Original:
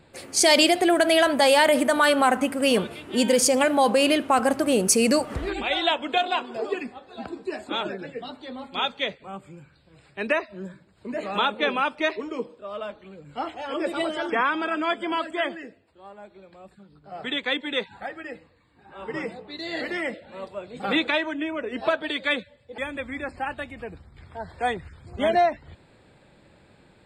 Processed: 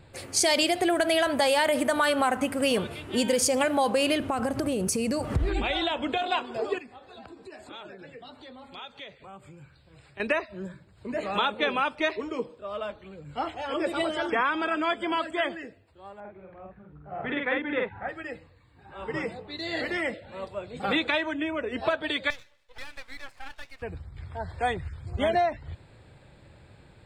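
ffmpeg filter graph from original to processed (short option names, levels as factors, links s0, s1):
-filter_complex "[0:a]asettb=1/sr,asplit=3[s0][s1][s2];[s0]atrim=end=4.204[s3];[s1]atrim=start=4.2:end=6.22,asetpts=PTS-STARTPTS,afade=t=in:d=0.004:c=qsin,afade=t=out:st=2.016:d=0.004:c=qsin,lowshelf=f=360:g=8,acompressor=threshold=0.0794:ratio=10:attack=3.2:release=140:knee=1:detection=peak[s4];[s2]atrim=start=6.216[s5];[s3][s4]acrossfade=d=0.004:c1=hsin:c2=qsin[s6];[s6][s5]acrossfade=d=0.004:c1=qsin:c2=hsin,asettb=1/sr,asplit=3[s7][s8][s9];[s7]atrim=end=6.784[s10];[s8]atrim=start=6.78:end=10.2,asetpts=PTS-STARTPTS,afade=t=in:d=0.004:c=qsin,afade=t=out:st=3.416:d=0.004:c=qsin,acompressor=threshold=0.00708:ratio=3:attack=3.2:release=140:knee=1:detection=peak,lowshelf=f=220:g=-4.5[s11];[s9]atrim=start=10.196[s12];[s10][s11]acrossfade=d=0.004:c1=hsin:c2=qsin[s13];[s13][s12]acrossfade=d=0.004:c1=qsin:c2=hsin,asettb=1/sr,asplit=3[s14][s15][s16];[s14]atrim=end=16.204[s17];[s15]atrim=start=16.2:end=18.09,asetpts=PTS-STARTPTS,afade=t=in:d=0.004:c=qsin,afade=t=out:st=1.886:d=0.004:c=qsin,lowpass=f=2200:w=0.5412,lowpass=f=2200:w=1.3066,asplit=2[s18][s19];[s19]adelay=48,volume=0.794[s20];[s18][s20]amix=inputs=2:normalize=0,atrim=end_sample=83349[s21];[s16]atrim=start=18.086[s22];[s17][s21]acrossfade=d=0.004:c1=hsin:c2=qsin[s23];[s23][s22]acrossfade=d=0.004:c1=qsin:c2=hsin,asettb=1/sr,asplit=3[s24][s25][s26];[s24]atrim=end=22.304[s27];[s25]atrim=start=22.3:end=23.82,asetpts=PTS-STARTPTS,afade=t=in:d=0.004:c=qsin,afade=t=out:st=1.516:d=0.004:c=qsin,highpass=960,acompressor=threshold=0.02:ratio=3:attack=3.2:release=140:knee=1:detection=peak,aeval=exprs='max(val(0),0)':c=same[s28];[s26]atrim=start=23.816[s29];[s27][s28]acrossfade=d=0.004:c1=hsin:c2=qsin[s30];[s30][s29]acrossfade=d=0.004:c1=qsin:c2=hsin,lowshelf=f=150:t=q:w=1.5:g=6.5,acompressor=threshold=0.0794:ratio=2.5"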